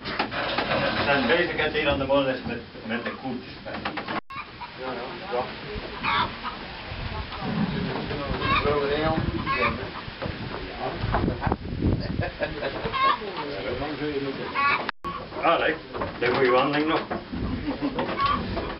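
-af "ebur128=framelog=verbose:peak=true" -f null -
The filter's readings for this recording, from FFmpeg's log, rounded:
Integrated loudness:
  I:         -26.5 LUFS
  Threshold: -36.5 LUFS
Loudness range:
  LRA:         5.9 LU
  Threshold: -46.9 LUFS
  LRA low:   -30.4 LUFS
  LRA high:  -24.5 LUFS
True peak:
  Peak:       -8.0 dBFS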